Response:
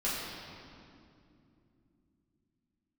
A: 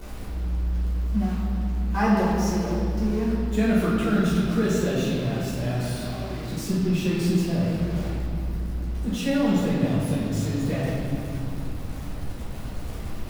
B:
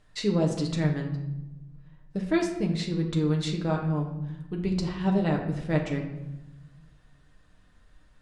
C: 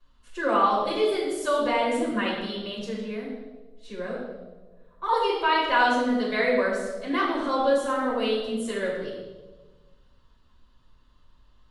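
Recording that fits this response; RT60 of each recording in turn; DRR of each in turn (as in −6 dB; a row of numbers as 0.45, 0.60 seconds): A; 2.7, 1.0, 1.3 seconds; −9.5, 0.5, −11.5 decibels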